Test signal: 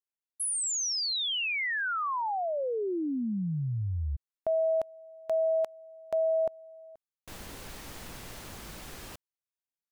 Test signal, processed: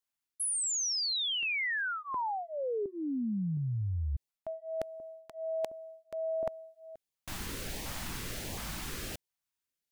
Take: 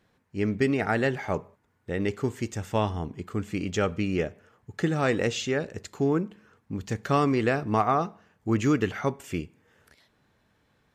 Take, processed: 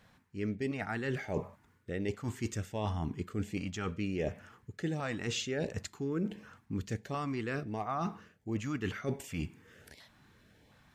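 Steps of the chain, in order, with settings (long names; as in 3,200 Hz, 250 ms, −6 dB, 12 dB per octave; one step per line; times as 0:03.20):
reversed playback
downward compressor 12 to 1, threshold −36 dBFS
reversed playback
auto-filter notch saw up 1.4 Hz 320–1,500 Hz
level +5.5 dB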